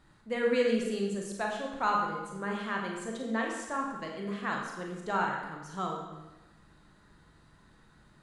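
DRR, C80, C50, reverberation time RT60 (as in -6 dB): -0.5 dB, 4.5 dB, 2.0 dB, 1.1 s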